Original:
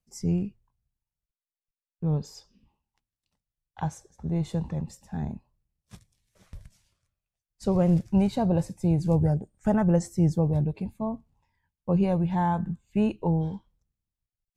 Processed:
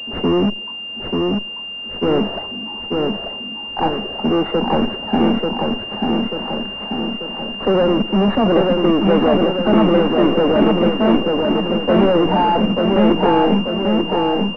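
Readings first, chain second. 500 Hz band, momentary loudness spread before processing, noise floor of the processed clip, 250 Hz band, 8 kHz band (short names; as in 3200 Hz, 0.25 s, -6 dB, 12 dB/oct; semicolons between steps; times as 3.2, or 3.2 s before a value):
+16.0 dB, 12 LU, -29 dBFS, +11.5 dB, n/a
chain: steep high-pass 210 Hz 72 dB/oct; in parallel at -7.5 dB: fuzz box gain 46 dB, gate -45 dBFS; on the sum: power-law curve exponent 0.35; air absorption 100 m; on a send: feedback echo 0.889 s, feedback 58%, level -3 dB; on the sum: pulse-width modulation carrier 2800 Hz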